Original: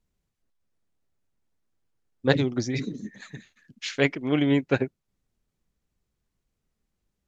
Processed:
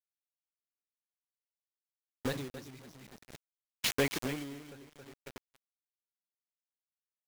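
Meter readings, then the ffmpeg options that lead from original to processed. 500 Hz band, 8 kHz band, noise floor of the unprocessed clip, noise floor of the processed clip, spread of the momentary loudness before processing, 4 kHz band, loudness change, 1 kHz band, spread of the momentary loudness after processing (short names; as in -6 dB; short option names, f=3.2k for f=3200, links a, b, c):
-12.0 dB, n/a, -81 dBFS, under -85 dBFS, 17 LU, -4.5 dB, -9.5 dB, -9.0 dB, 22 LU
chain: -filter_complex "[0:a]aecho=1:1:271|542|813|1084|1355:0.596|0.25|0.105|0.0441|0.0185,acrossover=split=2600[a][b];[a]asoftclip=type=tanh:threshold=-16.5dB[c];[c][b]amix=inputs=2:normalize=0,aresample=22050,aresample=44100,acrusher=bits=4:mix=0:aa=0.000001,agate=range=-33dB:threshold=-34dB:ratio=3:detection=peak,acompressor=threshold=-29dB:ratio=6,aeval=exprs='val(0)*pow(10,-25*(0.5-0.5*cos(2*PI*0.51*n/s))/20)':c=same,volume=3.5dB"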